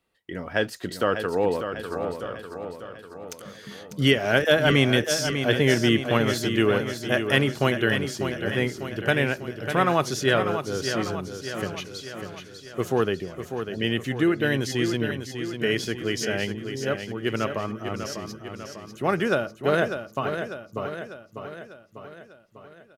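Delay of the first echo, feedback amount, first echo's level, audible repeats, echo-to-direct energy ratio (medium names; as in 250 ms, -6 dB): 597 ms, 56%, -8.0 dB, 6, -6.5 dB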